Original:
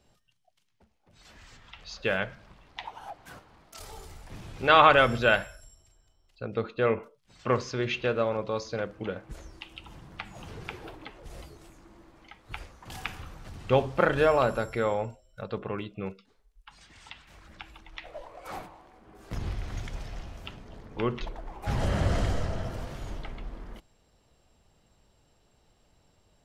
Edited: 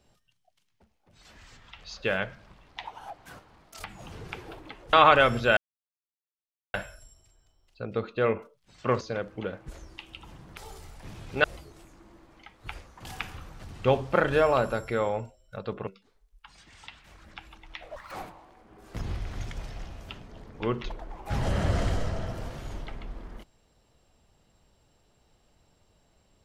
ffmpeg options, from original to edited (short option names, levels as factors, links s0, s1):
-filter_complex "[0:a]asplit=10[s0][s1][s2][s3][s4][s5][s6][s7][s8][s9];[s0]atrim=end=3.842[s10];[s1]atrim=start=10.198:end=11.292[s11];[s2]atrim=start=4.708:end=5.35,asetpts=PTS-STARTPTS,afade=t=out:st=0.638:d=0.004:c=hsin,apad=pad_dur=1.17[s12];[s3]atrim=start=5.35:end=7.622,asetpts=PTS-STARTPTS,afade=t=in:d=0.004:c=hsin[s13];[s4]atrim=start=8.638:end=10.202[s14];[s5]atrim=start=3.838:end=4.712[s15];[s6]atrim=start=11.288:end=15.722[s16];[s7]atrim=start=16.098:end=18.194[s17];[s8]atrim=start=18.19:end=18.48,asetpts=PTS-STARTPTS,asetrate=82908,aresample=44100[s18];[s9]atrim=start=18.476[s19];[s10][s11]acrossfade=d=0.004:c1=hsin:c2=hsin[s20];[s12][s13]concat=n=2:v=0:a=1[s21];[s20][s21]acrossfade=d=0.004:c1=hsin:c2=hsin[s22];[s22][s14]acrossfade=d=0.004:c1=hsin:c2=hsin[s23];[s23][s15]acrossfade=d=0.004:c1=hsin:c2=hsin[s24];[s24][s16]acrossfade=d=0.004:c1=hsin:c2=hsin[s25];[s25][s17]acrossfade=d=0.004:c1=hsin:c2=hsin[s26];[s26][s18]acrossfade=d=0.004:c1=hsin:c2=hsin[s27];[s27][s19]acrossfade=d=0.004:c1=hsin:c2=hsin"